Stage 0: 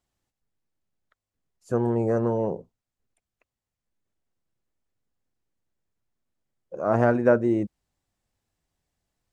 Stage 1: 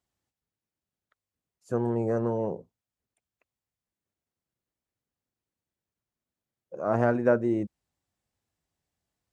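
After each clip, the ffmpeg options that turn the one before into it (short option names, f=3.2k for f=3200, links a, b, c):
-af "highpass=57,volume=-3.5dB"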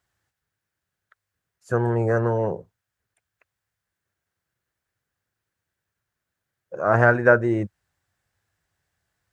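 -af "equalizer=f=100:t=o:w=0.67:g=5,equalizer=f=250:t=o:w=0.67:g=-7,equalizer=f=1.6k:t=o:w=0.67:g=11,volume=6dB"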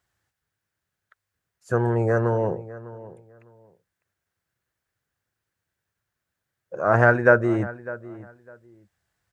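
-filter_complex "[0:a]asplit=2[a][b];[b]adelay=603,lowpass=f=2.4k:p=1,volume=-17dB,asplit=2[c][d];[d]adelay=603,lowpass=f=2.4k:p=1,volume=0.21[e];[a][c][e]amix=inputs=3:normalize=0"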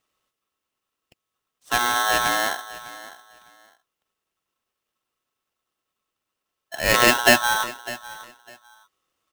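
-af "aeval=exprs='val(0)*sgn(sin(2*PI*1200*n/s))':c=same"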